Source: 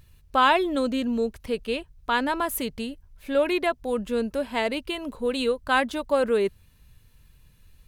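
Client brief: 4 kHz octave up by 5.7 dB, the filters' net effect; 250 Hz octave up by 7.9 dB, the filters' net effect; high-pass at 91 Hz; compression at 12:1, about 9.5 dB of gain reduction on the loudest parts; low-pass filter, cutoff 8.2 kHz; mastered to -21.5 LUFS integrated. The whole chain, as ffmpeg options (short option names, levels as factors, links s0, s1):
-af "highpass=91,lowpass=8200,equalizer=f=250:t=o:g=9,equalizer=f=4000:t=o:g=7.5,acompressor=threshold=0.0631:ratio=12,volume=2.51"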